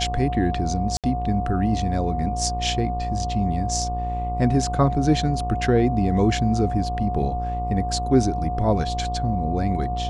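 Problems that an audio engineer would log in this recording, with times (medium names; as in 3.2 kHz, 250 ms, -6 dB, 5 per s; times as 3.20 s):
buzz 60 Hz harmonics 20 -28 dBFS
whine 720 Hz -27 dBFS
0.97–1.04 s: dropout 67 ms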